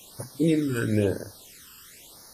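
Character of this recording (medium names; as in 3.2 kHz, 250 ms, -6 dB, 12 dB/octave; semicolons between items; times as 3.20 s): a quantiser's noise floor 8-bit, dither triangular; phasing stages 12, 1 Hz, lowest notch 660–2900 Hz; WMA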